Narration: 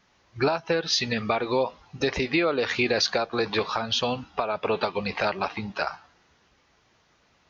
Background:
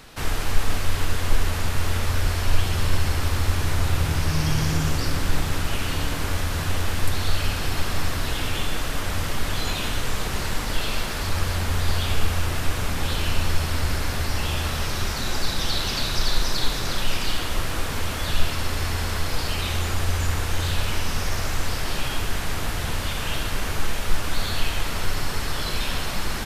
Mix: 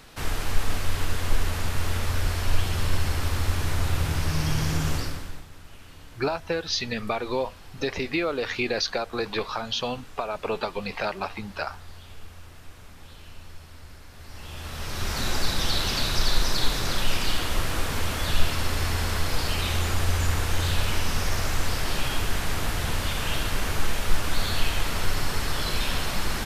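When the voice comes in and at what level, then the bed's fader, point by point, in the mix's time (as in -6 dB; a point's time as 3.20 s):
5.80 s, -3.0 dB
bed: 4.97 s -3 dB
5.48 s -21.5 dB
14.10 s -21.5 dB
15.19 s -0.5 dB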